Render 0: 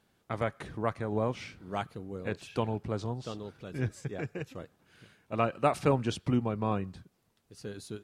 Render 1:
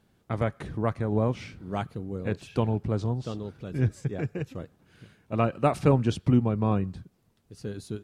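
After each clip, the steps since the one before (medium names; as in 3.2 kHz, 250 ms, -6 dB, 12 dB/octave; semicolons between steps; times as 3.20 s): bass shelf 370 Hz +9 dB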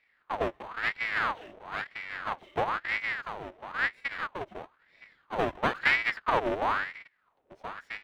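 square wave that keeps the level; Savitzky-Golay filter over 25 samples; ring modulator with a swept carrier 1.3 kHz, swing 65%, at 1 Hz; trim -6 dB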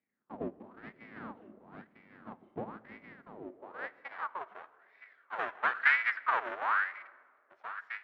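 band-pass sweep 230 Hz -> 1.5 kHz, 3.24–4.60 s; on a send at -16.5 dB: reverberation RT60 2.3 s, pre-delay 4 ms; on the sum: trim +3 dB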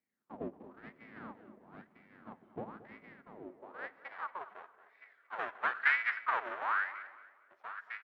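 feedback delay 226 ms, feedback 31%, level -16 dB; trim -3 dB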